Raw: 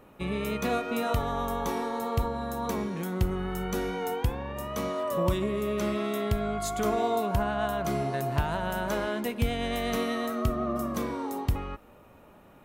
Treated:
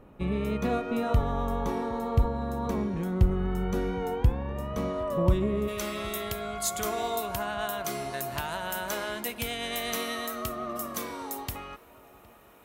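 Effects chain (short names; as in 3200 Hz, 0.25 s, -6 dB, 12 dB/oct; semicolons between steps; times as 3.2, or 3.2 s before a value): tilt -2 dB/oct, from 5.67 s +3 dB/oct; darkening echo 0.762 s, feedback 72%, low-pass 2000 Hz, level -21.5 dB; gain -2 dB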